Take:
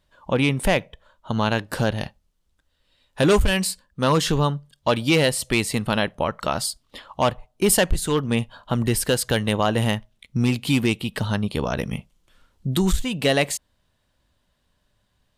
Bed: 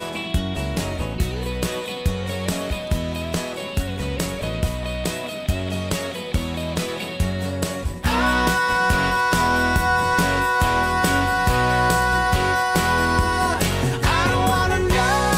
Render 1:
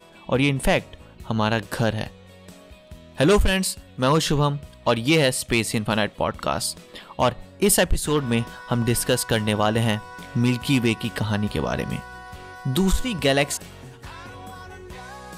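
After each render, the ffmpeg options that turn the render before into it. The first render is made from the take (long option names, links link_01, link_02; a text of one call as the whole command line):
ffmpeg -i in.wav -i bed.wav -filter_complex "[1:a]volume=-20.5dB[link_01];[0:a][link_01]amix=inputs=2:normalize=0" out.wav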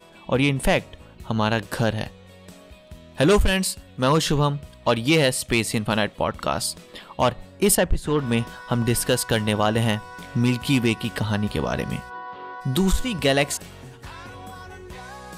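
ffmpeg -i in.wav -filter_complex "[0:a]asettb=1/sr,asplit=3[link_01][link_02][link_03];[link_01]atrim=end=7.754[link_04];[link_02]atrim=start=7.75:end=8.19,asetpts=PTS-STARTPTS,afade=type=in:duration=0.004:curve=qsin,afade=type=out:start_time=0.436:duration=0.004:curve=qsin,lowpass=frequency=1800:poles=1[link_05];[link_03]atrim=start=8.186[link_06];[link_04][link_05]acrossfade=duration=0.004:curve1=hsin:curve2=qsin[link_07];[link_07][link_06]acrossfade=duration=0.004:curve1=qsin:curve2=hsin,asplit=3[link_08][link_09][link_10];[link_08]afade=type=out:start_time=12.09:duration=0.02[link_11];[link_09]highpass=240,equalizer=frequency=300:width_type=q:width=4:gain=5,equalizer=frequency=460:width_type=q:width=4:gain=6,equalizer=frequency=1000:width_type=q:width=4:gain=10,equalizer=frequency=2400:width_type=q:width=4:gain=-6,lowpass=frequency=3700:width=0.5412,lowpass=frequency=3700:width=1.3066,afade=type=in:start_time=12.09:duration=0.02,afade=type=out:start_time=12.6:duration=0.02[link_12];[link_10]afade=type=in:start_time=12.6:duration=0.02[link_13];[link_11][link_12][link_13]amix=inputs=3:normalize=0" out.wav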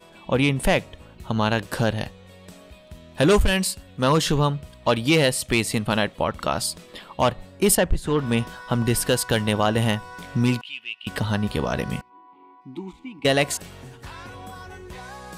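ffmpeg -i in.wav -filter_complex "[0:a]asettb=1/sr,asplit=3[link_01][link_02][link_03];[link_01]atrim=end=10.614[link_04];[link_02]atrim=start=10.61:end=11.07,asetpts=PTS-STARTPTS,afade=type=in:duration=0.004:curve=qsin,afade=type=out:start_time=0.456:duration=0.004:curve=qsin,bandpass=frequency=2800:width_type=q:width=8.9[link_05];[link_03]atrim=start=11.066[link_06];[link_04][link_05]acrossfade=duration=0.004:curve1=hsin:curve2=qsin[link_07];[link_07][link_06]acrossfade=duration=0.004:curve1=qsin:curve2=hsin,asettb=1/sr,asplit=3[link_08][link_09][link_10];[link_08]atrim=end=12.014[link_11];[link_09]atrim=start=12.01:end=13.25,asetpts=PTS-STARTPTS,afade=type=in:duration=0.004:curve=qsin,afade=type=out:start_time=1.236:duration=0.004:curve=qsin,asplit=3[link_12][link_13][link_14];[link_12]bandpass=frequency=300:width_type=q:width=8,volume=0dB[link_15];[link_13]bandpass=frequency=870:width_type=q:width=8,volume=-6dB[link_16];[link_14]bandpass=frequency=2240:width_type=q:width=8,volume=-9dB[link_17];[link_15][link_16][link_17]amix=inputs=3:normalize=0[link_18];[link_10]atrim=start=13.246[link_19];[link_11][link_18]acrossfade=duration=0.004:curve1=hsin:curve2=qsin[link_20];[link_20][link_19]acrossfade=duration=0.004:curve1=qsin:curve2=hsin" out.wav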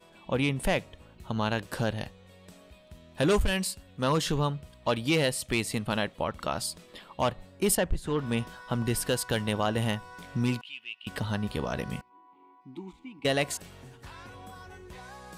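ffmpeg -i in.wav -af "volume=-7dB" out.wav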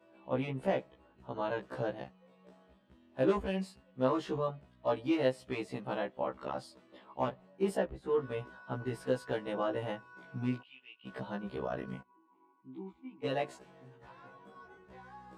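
ffmpeg -i in.wav -af "bandpass=frequency=510:width_type=q:width=0.69:csg=0,afftfilt=real='re*1.73*eq(mod(b,3),0)':imag='im*1.73*eq(mod(b,3),0)':win_size=2048:overlap=0.75" out.wav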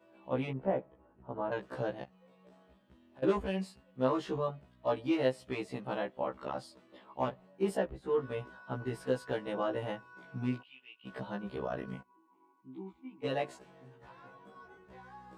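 ffmpeg -i in.wav -filter_complex "[0:a]asettb=1/sr,asplit=3[link_01][link_02][link_03];[link_01]atrim=end=0.534[link_04];[link_02]atrim=start=0.53:end=1.52,asetpts=PTS-STARTPTS,afade=type=in:duration=0.004:curve=qsin,afade=type=out:start_time=0.986:duration=0.004:curve=qsin,lowpass=1300[link_05];[link_03]atrim=start=1.516[link_06];[link_04][link_05]acrossfade=duration=0.004:curve1=hsin:curve2=qsin[link_07];[link_07][link_06]acrossfade=duration=0.004:curve1=qsin:curve2=hsin,asplit=3[link_08][link_09][link_10];[link_08]afade=type=out:start_time=2.04:duration=0.02[link_11];[link_09]acompressor=threshold=-53dB:ratio=6:attack=3.2:release=140:knee=1:detection=peak,afade=type=in:start_time=2.04:duration=0.02,afade=type=out:start_time=3.22:duration=0.02[link_12];[link_10]afade=type=in:start_time=3.22:duration=0.02[link_13];[link_11][link_12][link_13]amix=inputs=3:normalize=0" out.wav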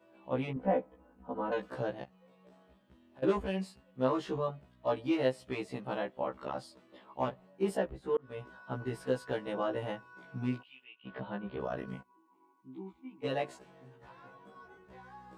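ffmpeg -i in.wav -filter_complex "[0:a]asettb=1/sr,asplit=3[link_01][link_02][link_03];[link_01]atrim=end=0.564[link_04];[link_02]atrim=start=0.56:end=1.7,asetpts=PTS-STARTPTS,afade=type=in:duration=0.004:curve=qsin,afade=type=out:start_time=1.136:duration=0.004:curve=qsin,aecho=1:1:4:0.99,atrim=end_sample=50274[link_05];[link_03]atrim=start=1.696[link_06];[link_04][link_05]acrossfade=duration=0.004:curve1=hsin:curve2=qsin[link_07];[link_07][link_06]acrossfade=duration=0.004:curve1=qsin:curve2=hsin,asettb=1/sr,asplit=3[link_08][link_09][link_10];[link_08]atrim=end=10.844[link_11];[link_09]atrim=start=10.84:end=11.6,asetpts=PTS-STARTPTS,afade=type=in:duration=0.004:curve=qsin,afade=type=out:start_time=0.756:duration=0.004:curve=qsin,lowpass=frequency=3500:width=0.5412,lowpass=frequency=3500:width=1.3066[link_12];[link_10]atrim=start=11.596[link_13];[link_11][link_12]acrossfade=duration=0.004:curve1=hsin:curve2=qsin[link_14];[link_14][link_13]acrossfade=duration=0.004:curve1=qsin:curve2=hsin,asplit=2[link_15][link_16];[link_15]atrim=end=8.17,asetpts=PTS-STARTPTS,afade=type=out:start_time=8.166:duration=0.004:curve=hsin[link_17];[link_16]atrim=start=8.17,asetpts=PTS-STARTPTS,afade=type=in:duration=0.5:curve=qsin[link_18];[link_17][link_18]concat=n=2:v=0:a=1" out.wav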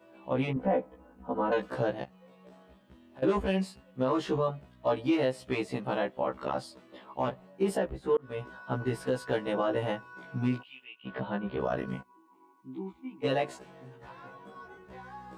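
ffmpeg -i in.wav -af "acontrast=52,alimiter=limit=-18dB:level=0:latency=1:release=75" out.wav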